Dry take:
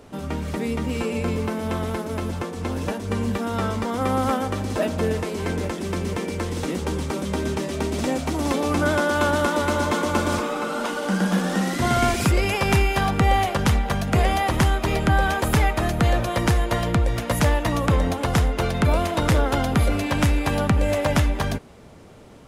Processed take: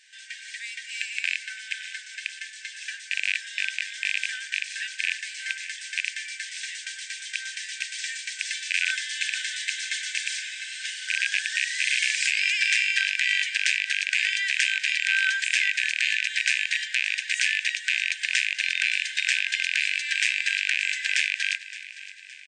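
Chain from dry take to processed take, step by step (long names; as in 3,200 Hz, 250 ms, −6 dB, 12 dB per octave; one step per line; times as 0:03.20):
loose part that buzzes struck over −22 dBFS, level −12 dBFS
on a send: repeating echo 567 ms, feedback 51%, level −16 dB
on the sum: brick-wall band-pass 1,500–9,000 Hz
level +3 dB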